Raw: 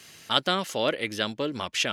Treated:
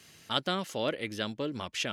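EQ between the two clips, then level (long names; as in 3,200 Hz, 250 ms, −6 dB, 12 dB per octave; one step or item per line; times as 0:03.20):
low-shelf EQ 340 Hz +6 dB
−7.0 dB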